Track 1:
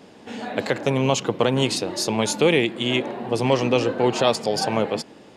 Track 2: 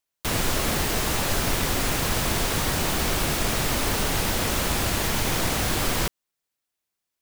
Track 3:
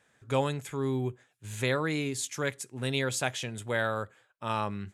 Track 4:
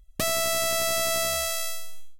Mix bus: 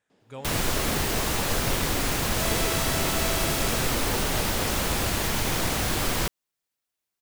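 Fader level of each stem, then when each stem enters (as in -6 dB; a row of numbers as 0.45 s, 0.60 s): -18.0 dB, -1.5 dB, -12.5 dB, -7.0 dB; 0.10 s, 0.20 s, 0.00 s, 2.20 s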